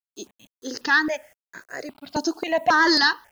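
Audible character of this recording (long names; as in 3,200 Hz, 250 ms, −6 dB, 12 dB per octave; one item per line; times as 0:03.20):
a quantiser's noise floor 10 bits, dither none
notches that jump at a steady rate 3.7 Hz 540–2,900 Hz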